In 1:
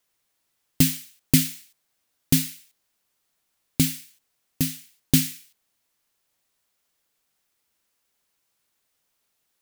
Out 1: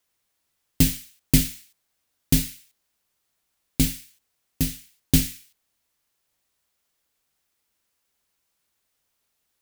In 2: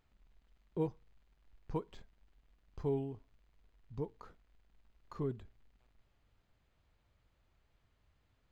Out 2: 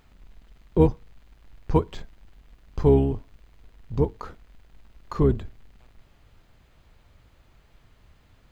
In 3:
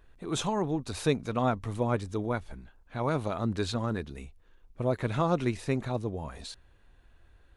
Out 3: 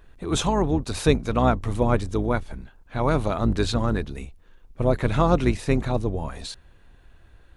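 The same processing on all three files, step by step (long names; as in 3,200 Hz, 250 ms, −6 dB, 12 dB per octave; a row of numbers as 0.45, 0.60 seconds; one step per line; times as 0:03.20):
sub-octave generator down 2 octaves, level −2 dB
loudness normalisation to −24 LKFS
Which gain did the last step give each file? −1.0, +16.5, +6.5 decibels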